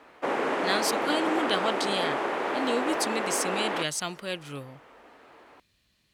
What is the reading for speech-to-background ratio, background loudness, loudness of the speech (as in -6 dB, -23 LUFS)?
-1.5 dB, -29.0 LUFS, -30.5 LUFS